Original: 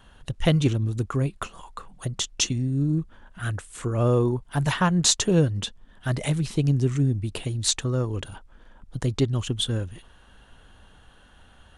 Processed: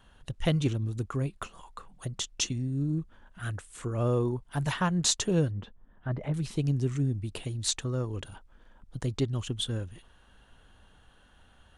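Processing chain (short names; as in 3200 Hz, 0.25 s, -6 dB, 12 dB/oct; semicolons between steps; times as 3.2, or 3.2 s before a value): 5.51–6.34 LPF 1400 Hz 12 dB/oct; gain -6 dB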